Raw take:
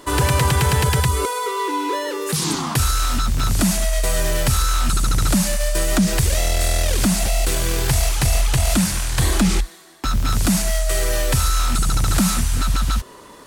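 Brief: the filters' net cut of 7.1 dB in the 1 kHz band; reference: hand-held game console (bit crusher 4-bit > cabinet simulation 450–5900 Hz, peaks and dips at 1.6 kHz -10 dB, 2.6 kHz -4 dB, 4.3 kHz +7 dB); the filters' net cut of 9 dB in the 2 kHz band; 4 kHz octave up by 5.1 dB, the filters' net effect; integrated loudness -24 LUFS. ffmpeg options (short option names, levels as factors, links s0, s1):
-af "equalizer=f=1000:t=o:g=-5.5,equalizer=f=2000:t=o:g=-5,equalizer=f=4000:t=o:g=4,acrusher=bits=3:mix=0:aa=0.000001,highpass=450,equalizer=f=1600:t=q:w=4:g=-10,equalizer=f=2600:t=q:w=4:g=-4,equalizer=f=4300:t=q:w=4:g=7,lowpass=f=5900:w=0.5412,lowpass=f=5900:w=1.3066,volume=0.841"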